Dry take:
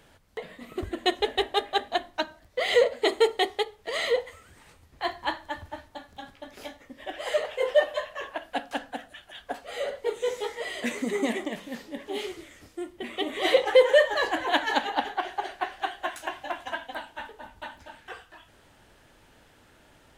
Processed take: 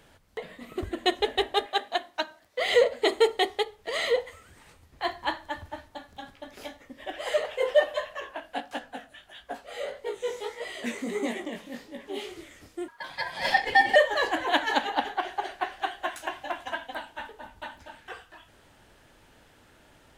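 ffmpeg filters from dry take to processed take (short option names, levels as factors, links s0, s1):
-filter_complex "[0:a]asettb=1/sr,asplit=3[s0][s1][s2];[s0]atrim=end=1.664[s3];[s1]atrim=start=1.66:end=2.6,asetpts=PTS-STARTPTS,afade=t=in:d=0.004:c=qsin,afade=t=out:st=0.936:d=0.004:c=qsin,highpass=f=450:p=1[s4];[s2]atrim=start=2.596[s5];[s3][s4]acrossfade=d=0.004:c1=hsin:c2=qsin[s6];[s6][s5]acrossfade=d=0.004:c1=qsin:c2=hsin,asettb=1/sr,asplit=3[s7][s8][s9];[s7]atrim=end=8.204[s10];[s8]atrim=start=8.2:end=12.36,asetpts=PTS-STARTPTS,afade=t=in:d=0.004:c=qsin,afade=t=out:st=4.156:d=0.004:c=qsin,flanger=delay=16:depth=7:speed=1.6[s11];[s9]atrim=start=12.356[s12];[s10][s11]acrossfade=d=0.004:c1=hsin:c2=qsin[s13];[s13][s12]acrossfade=d=0.004:c1=qsin:c2=hsin,asettb=1/sr,asplit=3[s14][s15][s16];[s14]atrim=end=12.884[s17];[s15]atrim=start=12.88:end=13.96,asetpts=PTS-STARTPTS,afade=t=in:d=0.004:c=qsin,afade=t=out:st=1.076:d=0.004:c=qsin,aeval=exprs='val(0)*sin(2*PI*1300*n/s)':c=same[s18];[s16]atrim=start=13.956[s19];[s17][s18]acrossfade=d=0.004:c1=hsin:c2=qsin[s20];[s20][s19]acrossfade=d=0.004:c1=qsin:c2=hsin"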